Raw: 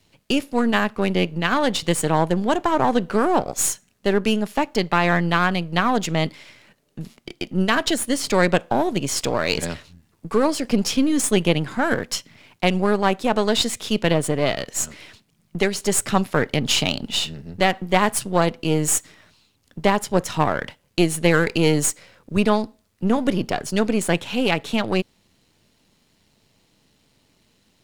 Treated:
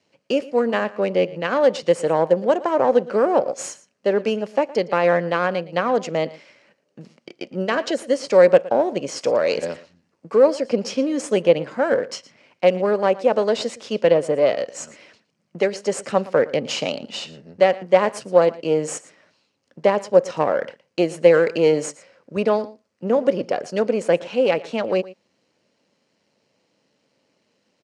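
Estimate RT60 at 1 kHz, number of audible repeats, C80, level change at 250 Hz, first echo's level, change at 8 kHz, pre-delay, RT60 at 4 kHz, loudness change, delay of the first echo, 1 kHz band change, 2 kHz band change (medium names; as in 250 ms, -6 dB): no reverb, 1, no reverb, -4.5 dB, -19.0 dB, -10.5 dB, no reverb, no reverb, +1.0 dB, 115 ms, -2.0 dB, -4.0 dB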